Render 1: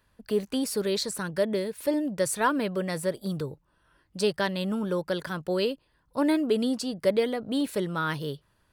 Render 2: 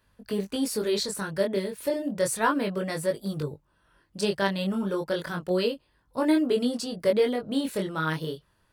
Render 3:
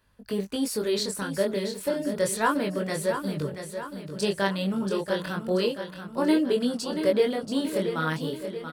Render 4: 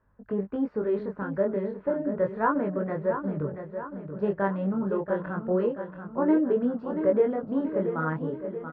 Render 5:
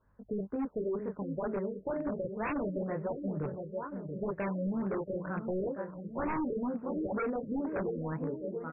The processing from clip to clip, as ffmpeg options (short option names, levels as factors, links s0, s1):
-af "flanger=delay=19.5:depth=6.4:speed=0.32,volume=1.5"
-af "aecho=1:1:682|1364|2046|2728|3410|4092:0.355|0.185|0.0959|0.0499|0.0259|0.0135"
-af "lowpass=f=1500:w=0.5412,lowpass=f=1500:w=1.3066"
-af "aeval=exprs='0.0708*(abs(mod(val(0)/0.0708+3,4)-2)-1)':c=same,acompressor=threshold=0.0224:ratio=1.5,afftfilt=real='re*lt(b*sr/1024,570*pow(2800/570,0.5+0.5*sin(2*PI*2.1*pts/sr)))':imag='im*lt(b*sr/1024,570*pow(2800/570,0.5+0.5*sin(2*PI*2.1*pts/sr)))':win_size=1024:overlap=0.75,volume=0.794"